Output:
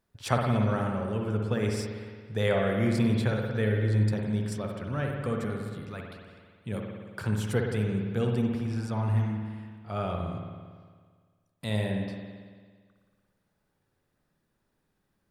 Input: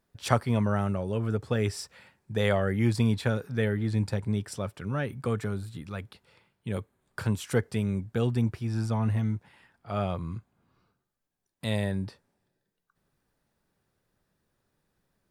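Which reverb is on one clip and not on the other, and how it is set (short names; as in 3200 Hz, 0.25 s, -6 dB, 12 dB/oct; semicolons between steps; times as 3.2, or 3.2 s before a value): spring tank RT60 1.7 s, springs 56 ms, chirp 40 ms, DRR 1 dB; gain -2.5 dB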